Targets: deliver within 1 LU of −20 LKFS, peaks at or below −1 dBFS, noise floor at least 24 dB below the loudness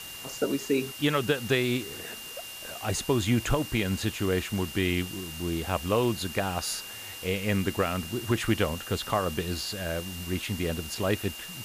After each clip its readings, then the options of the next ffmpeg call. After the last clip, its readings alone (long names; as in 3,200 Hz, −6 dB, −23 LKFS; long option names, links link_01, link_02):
interfering tone 2,800 Hz; level of the tone −42 dBFS; background noise floor −41 dBFS; target noise floor −53 dBFS; integrated loudness −29.0 LKFS; sample peak −13.0 dBFS; target loudness −20.0 LKFS
→ -af "bandreject=frequency=2800:width=30"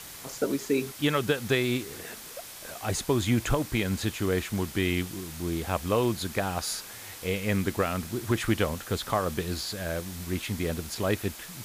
interfering tone none found; background noise floor −44 dBFS; target noise floor −54 dBFS
→ -af "afftdn=noise_reduction=10:noise_floor=-44"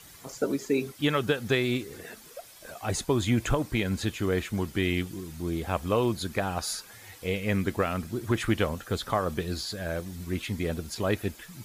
background noise floor −51 dBFS; target noise floor −54 dBFS
→ -af "afftdn=noise_reduction=6:noise_floor=-51"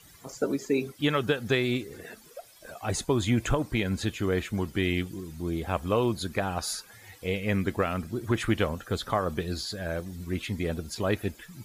background noise floor −54 dBFS; integrated loudness −29.5 LKFS; sample peak −13.5 dBFS; target loudness −20.0 LKFS
→ -af "volume=9.5dB"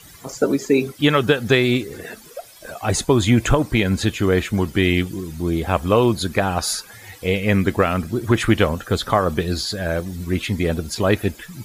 integrated loudness −20.0 LKFS; sample peak −4.0 dBFS; background noise floor −44 dBFS